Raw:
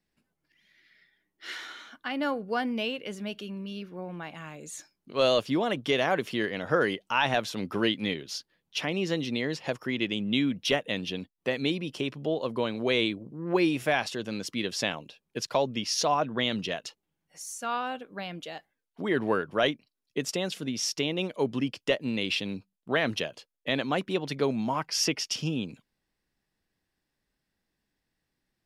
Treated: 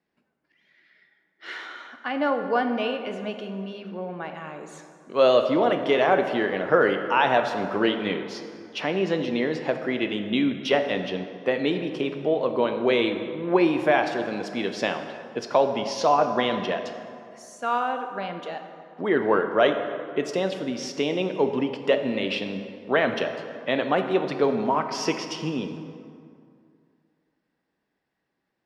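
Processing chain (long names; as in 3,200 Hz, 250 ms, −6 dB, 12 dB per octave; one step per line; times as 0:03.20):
resonant band-pass 700 Hz, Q 0.52
dense smooth reverb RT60 2.4 s, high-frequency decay 0.55×, DRR 6 dB
level +6.5 dB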